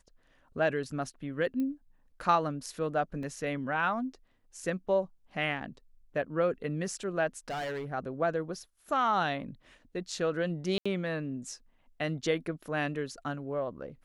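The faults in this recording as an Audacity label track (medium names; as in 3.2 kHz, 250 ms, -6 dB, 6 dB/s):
1.600000	1.600000	pop -24 dBFS
3.230000	3.230000	dropout 2.4 ms
7.380000	7.860000	clipped -32.5 dBFS
10.780000	10.860000	dropout 75 ms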